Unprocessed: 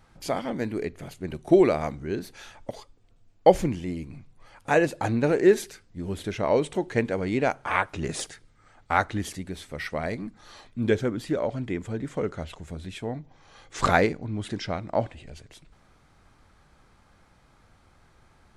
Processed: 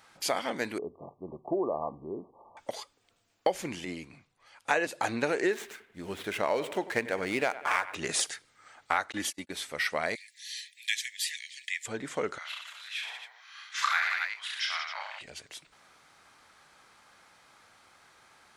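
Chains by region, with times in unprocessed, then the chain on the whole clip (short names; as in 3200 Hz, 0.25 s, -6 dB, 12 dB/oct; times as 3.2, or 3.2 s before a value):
0.78–2.57 compressor 1.5:1, threshold -32 dBFS + brick-wall FIR low-pass 1200 Hz + mismatched tape noise reduction decoder only
3.85–4.87 high shelf 9400 Hz -10 dB + three-band expander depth 40%
5.52–7.95 median filter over 9 samples + analogue delay 94 ms, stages 2048, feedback 45%, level -16.5 dB
9.12–9.52 gate -37 dBFS, range -34 dB + comb 3.5 ms, depth 56%
10.15–11.86 Chebyshev high-pass 1700 Hz, order 10 + high shelf 3100 Hz +8.5 dB
12.38–15.21 HPF 1300 Hz 24 dB/oct + bell 8400 Hz -13.5 dB 0.99 oct + reverse bouncing-ball echo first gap 30 ms, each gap 1.3×, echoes 5, each echo -2 dB
whole clip: HPF 1300 Hz 6 dB/oct; compressor 6:1, threshold -31 dBFS; gain +7 dB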